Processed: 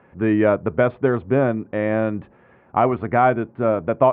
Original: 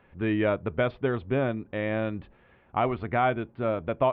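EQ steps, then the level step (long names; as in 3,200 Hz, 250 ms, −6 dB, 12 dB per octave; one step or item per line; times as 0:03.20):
high-pass filter 110 Hz 12 dB per octave
low-pass filter 1,700 Hz 12 dB per octave
+8.5 dB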